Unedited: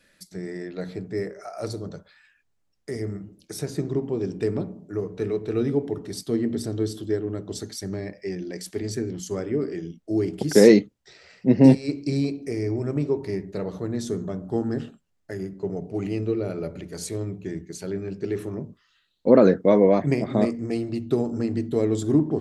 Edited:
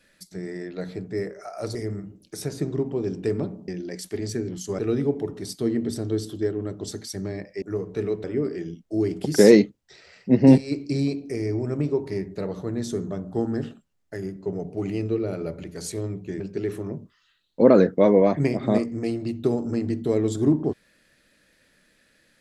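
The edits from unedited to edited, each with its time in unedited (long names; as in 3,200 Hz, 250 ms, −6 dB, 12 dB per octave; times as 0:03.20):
0:01.75–0:02.92: remove
0:04.85–0:05.47: swap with 0:08.30–0:09.41
0:17.57–0:18.07: remove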